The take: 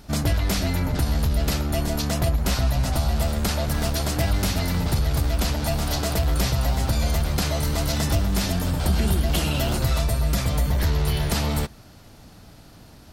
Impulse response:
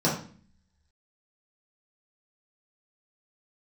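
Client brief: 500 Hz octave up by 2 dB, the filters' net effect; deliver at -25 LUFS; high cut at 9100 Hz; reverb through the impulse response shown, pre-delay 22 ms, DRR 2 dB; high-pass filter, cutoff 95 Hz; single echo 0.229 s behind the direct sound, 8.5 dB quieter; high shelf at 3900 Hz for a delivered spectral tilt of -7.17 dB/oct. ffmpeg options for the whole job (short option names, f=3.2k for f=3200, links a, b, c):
-filter_complex "[0:a]highpass=95,lowpass=9.1k,equalizer=f=500:t=o:g=3,highshelf=f=3.9k:g=-6.5,aecho=1:1:229:0.376,asplit=2[a][b];[1:a]atrim=start_sample=2205,adelay=22[c];[b][c]afir=irnorm=-1:irlink=0,volume=-15dB[d];[a][d]amix=inputs=2:normalize=0,volume=-6dB"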